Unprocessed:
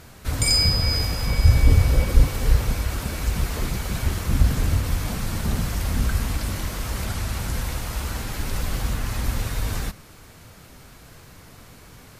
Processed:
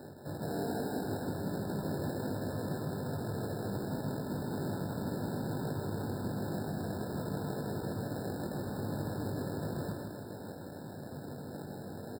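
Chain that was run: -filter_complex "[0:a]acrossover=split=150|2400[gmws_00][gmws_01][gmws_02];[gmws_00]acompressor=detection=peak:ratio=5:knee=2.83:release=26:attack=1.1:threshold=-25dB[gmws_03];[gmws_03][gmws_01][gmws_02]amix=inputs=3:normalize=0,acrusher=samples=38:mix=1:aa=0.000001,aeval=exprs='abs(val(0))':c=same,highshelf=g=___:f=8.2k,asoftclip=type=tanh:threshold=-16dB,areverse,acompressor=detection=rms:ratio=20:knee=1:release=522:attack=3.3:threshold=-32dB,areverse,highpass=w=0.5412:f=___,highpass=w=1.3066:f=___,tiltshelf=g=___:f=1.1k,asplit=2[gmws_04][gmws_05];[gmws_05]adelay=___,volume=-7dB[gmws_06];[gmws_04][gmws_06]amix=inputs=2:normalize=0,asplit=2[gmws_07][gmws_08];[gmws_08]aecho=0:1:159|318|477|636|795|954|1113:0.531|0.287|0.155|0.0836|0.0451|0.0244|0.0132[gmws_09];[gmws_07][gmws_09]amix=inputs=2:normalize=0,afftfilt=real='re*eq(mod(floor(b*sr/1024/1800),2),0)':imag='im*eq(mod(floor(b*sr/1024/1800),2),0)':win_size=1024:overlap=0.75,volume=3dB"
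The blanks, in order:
9.5, 98, 98, 3.5, 20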